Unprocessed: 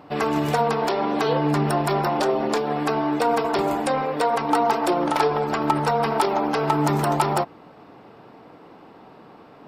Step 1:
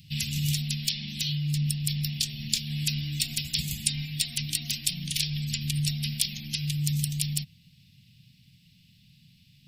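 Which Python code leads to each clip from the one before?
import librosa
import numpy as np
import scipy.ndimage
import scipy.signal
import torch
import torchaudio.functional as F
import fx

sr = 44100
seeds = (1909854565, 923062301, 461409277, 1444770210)

y = scipy.signal.sosfilt(scipy.signal.cheby2(4, 50, [330.0, 1400.0], 'bandstop', fs=sr, output='sos'), x)
y = fx.high_shelf(y, sr, hz=5900.0, db=6.0)
y = fx.rider(y, sr, range_db=10, speed_s=0.5)
y = y * 10.0 ** (4.0 / 20.0)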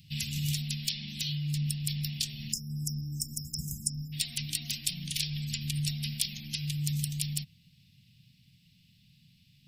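y = fx.spec_erase(x, sr, start_s=2.53, length_s=1.6, low_hz=540.0, high_hz=5000.0)
y = y * 10.0 ** (-4.0 / 20.0)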